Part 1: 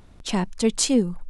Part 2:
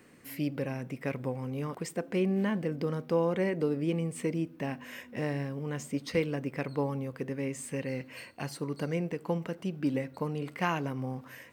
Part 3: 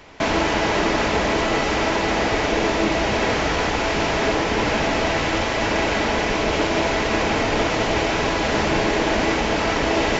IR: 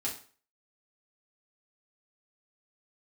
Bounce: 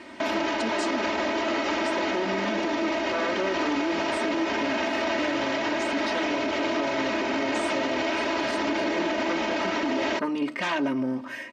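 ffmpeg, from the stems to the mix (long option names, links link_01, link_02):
-filter_complex "[0:a]tremolo=f=1.6:d=0.58,volume=-3dB,asplit=2[link_01][link_02];[1:a]aeval=exprs='0.2*sin(PI/2*3.55*val(0)/0.2)':channel_layout=same,volume=-5.5dB[link_03];[2:a]volume=-3.5dB[link_04];[link_02]apad=whole_len=508193[link_05];[link_03][link_05]sidechaincompress=threshold=-44dB:ratio=8:attack=16:release=755[link_06];[link_01][link_06][link_04]amix=inputs=3:normalize=0,highpass=190,lowpass=5300,aecho=1:1:3.2:0.95,alimiter=limit=-18dB:level=0:latency=1:release=62"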